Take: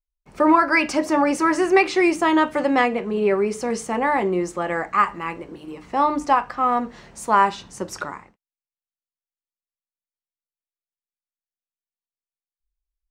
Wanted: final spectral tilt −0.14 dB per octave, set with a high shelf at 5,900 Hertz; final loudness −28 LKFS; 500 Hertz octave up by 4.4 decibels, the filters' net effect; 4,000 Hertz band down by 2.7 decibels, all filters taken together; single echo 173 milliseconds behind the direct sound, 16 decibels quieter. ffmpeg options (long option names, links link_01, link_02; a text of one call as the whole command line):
ffmpeg -i in.wav -af "equalizer=frequency=500:width_type=o:gain=6,equalizer=frequency=4000:width_type=o:gain=-6,highshelf=frequency=5900:gain=5,aecho=1:1:173:0.158,volume=-10dB" out.wav